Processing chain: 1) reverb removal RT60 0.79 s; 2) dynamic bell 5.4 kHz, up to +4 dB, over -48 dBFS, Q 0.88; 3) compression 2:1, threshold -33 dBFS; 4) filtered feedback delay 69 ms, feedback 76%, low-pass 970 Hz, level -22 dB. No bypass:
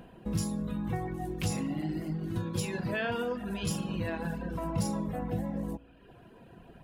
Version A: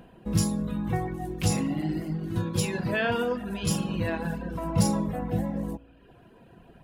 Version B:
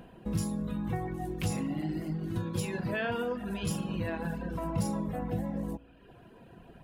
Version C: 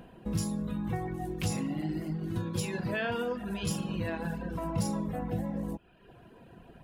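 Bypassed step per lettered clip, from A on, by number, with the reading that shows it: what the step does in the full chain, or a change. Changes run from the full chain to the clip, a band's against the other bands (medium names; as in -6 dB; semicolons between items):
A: 3, mean gain reduction 3.5 dB; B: 2, 4 kHz band -2.0 dB; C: 4, echo-to-direct -25.0 dB to none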